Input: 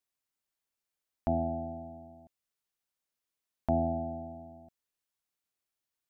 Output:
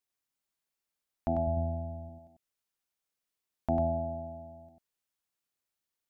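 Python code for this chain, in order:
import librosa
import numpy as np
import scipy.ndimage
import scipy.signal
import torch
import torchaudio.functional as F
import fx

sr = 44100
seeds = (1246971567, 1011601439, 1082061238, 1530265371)

y = fx.low_shelf(x, sr, hz=170.0, db=12.0, at=(1.47, 2.09))
y = y + 10.0 ** (-5.0 / 20.0) * np.pad(y, (int(96 * sr / 1000.0), 0))[:len(y)]
y = y * 10.0 ** (-1.0 / 20.0)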